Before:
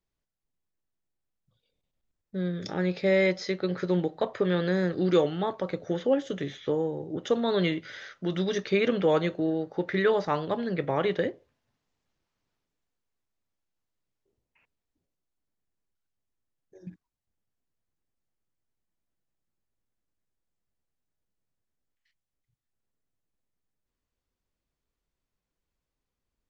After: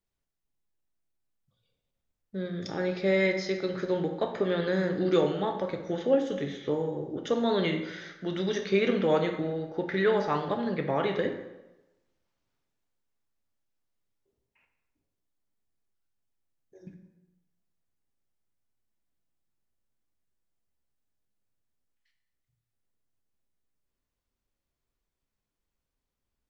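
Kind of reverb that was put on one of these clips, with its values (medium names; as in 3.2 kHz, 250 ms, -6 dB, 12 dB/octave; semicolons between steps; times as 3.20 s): plate-style reverb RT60 1 s, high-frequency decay 0.75×, DRR 4 dB; trim -2 dB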